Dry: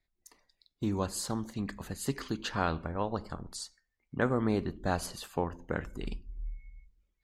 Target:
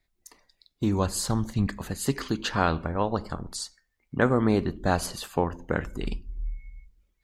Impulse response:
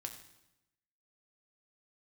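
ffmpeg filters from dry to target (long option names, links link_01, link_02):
-filter_complex "[0:a]asettb=1/sr,asplit=3[link_01][link_02][link_03];[link_01]atrim=end=0.844[link_04];[link_02]atrim=start=0.84:end=1.67,asetpts=PTS-STARTPTS,afade=type=in:duration=0.004:curve=qsin,afade=type=out:start_time=0.826:duration=0.004:curve=qsin,asubboost=boost=11:cutoff=160[link_05];[link_03]atrim=start=1.666[link_06];[link_04][link_05]acrossfade=duration=0.004:curve1=hsin:curve2=qsin[link_07];[link_07][link_06]acrossfade=duration=0.004:curve1=qsin:curve2=hsin,volume=6.5dB"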